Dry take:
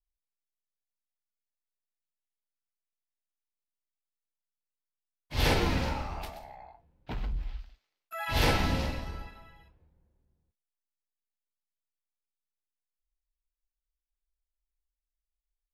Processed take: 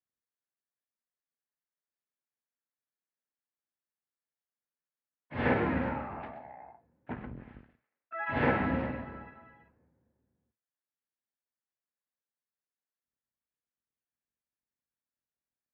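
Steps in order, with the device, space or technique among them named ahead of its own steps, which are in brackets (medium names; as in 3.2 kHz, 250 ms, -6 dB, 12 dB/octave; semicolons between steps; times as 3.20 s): sub-octave bass pedal (octave divider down 1 oct, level -4 dB; cabinet simulation 84–2100 Hz, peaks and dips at 88 Hz -9 dB, 170 Hz -3 dB, 240 Hz +6 dB, 530 Hz +3 dB, 1.7 kHz +5 dB); trim -1 dB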